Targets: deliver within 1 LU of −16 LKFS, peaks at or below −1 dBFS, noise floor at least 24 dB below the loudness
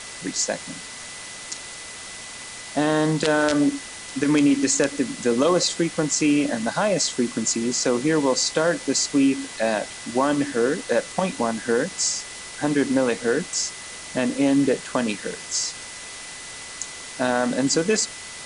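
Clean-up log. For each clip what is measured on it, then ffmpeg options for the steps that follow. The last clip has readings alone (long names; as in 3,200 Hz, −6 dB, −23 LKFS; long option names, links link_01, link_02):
interfering tone 2,000 Hz; level of the tone −43 dBFS; background noise floor −38 dBFS; target noise floor −47 dBFS; integrated loudness −22.5 LKFS; sample peak −5.0 dBFS; target loudness −16.0 LKFS
→ -af "bandreject=frequency=2000:width=30"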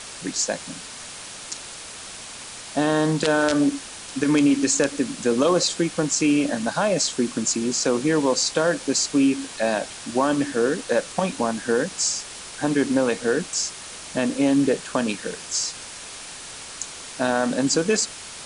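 interfering tone none found; background noise floor −38 dBFS; target noise floor −47 dBFS
→ -af "afftdn=noise_reduction=9:noise_floor=-38"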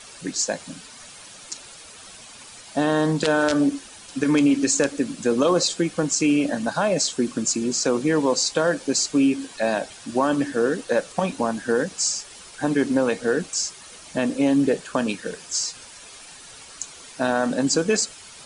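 background noise floor −44 dBFS; target noise floor −47 dBFS
→ -af "afftdn=noise_reduction=6:noise_floor=-44"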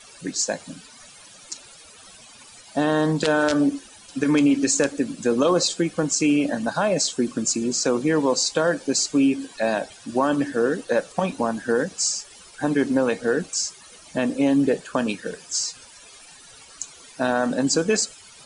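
background noise floor −47 dBFS; integrated loudness −22.5 LKFS; sample peak −5.5 dBFS; target loudness −16.0 LKFS
→ -af "volume=6.5dB,alimiter=limit=-1dB:level=0:latency=1"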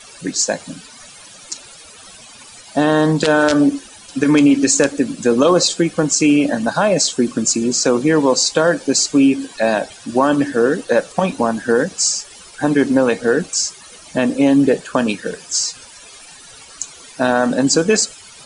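integrated loudness −16.0 LKFS; sample peak −1.0 dBFS; background noise floor −41 dBFS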